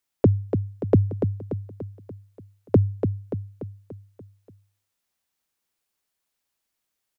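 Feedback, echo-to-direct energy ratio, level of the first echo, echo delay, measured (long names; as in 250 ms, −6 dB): 53%, −5.5 dB, −7.0 dB, 290 ms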